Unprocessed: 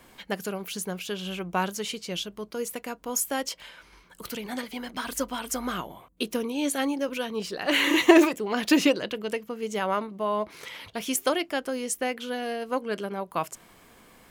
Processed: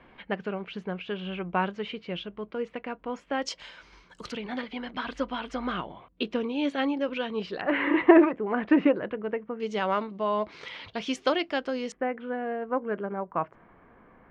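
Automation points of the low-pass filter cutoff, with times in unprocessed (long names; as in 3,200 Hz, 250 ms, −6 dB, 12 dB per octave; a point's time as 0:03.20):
low-pass filter 24 dB per octave
2,800 Hz
from 0:03.42 6,300 Hz
from 0:04.32 3,600 Hz
from 0:07.61 1,900 Hz
from 0:09.60 4,800 Hz
from 0:11.92 1,800 Hz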